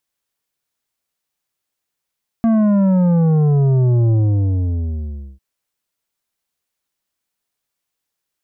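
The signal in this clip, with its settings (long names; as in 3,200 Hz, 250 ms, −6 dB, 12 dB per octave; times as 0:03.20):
bass drop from 230 Hz, over 2.95 s, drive 9 dB, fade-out 1.28 s, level −12 dB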